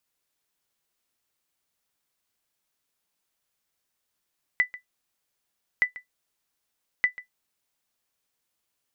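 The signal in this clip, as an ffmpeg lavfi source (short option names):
-f lavfi -i "aevalsrc='0.251*(sin(2*PI*1990*mod(t,1.22))*exp(-6.91*mod(t,1.22)/0.12)+0.126*sin(2*PI*1990*max(mod(t,1.22)-0.14,0))*exp(-6.91*max(mod(t,1.22)-0.14,0)/0.12))':d=3.66:s=44100"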